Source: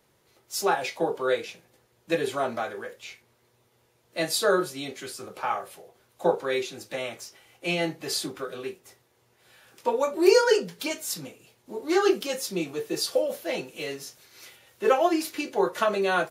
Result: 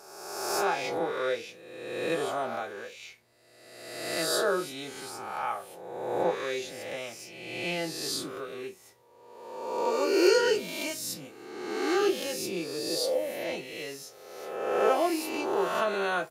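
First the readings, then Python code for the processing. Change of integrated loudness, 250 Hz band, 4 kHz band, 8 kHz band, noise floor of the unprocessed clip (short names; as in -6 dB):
-3.0 dB, -3.0 dB, -1.5 dB, -2.0 dB, -66 dBFS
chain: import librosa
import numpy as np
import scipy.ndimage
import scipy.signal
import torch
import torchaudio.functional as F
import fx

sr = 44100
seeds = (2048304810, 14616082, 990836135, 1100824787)

y = fx.spec_swells(x, sr, rise_s=1.37)
y = y * 10.0 ** (-7.0 / 20.0)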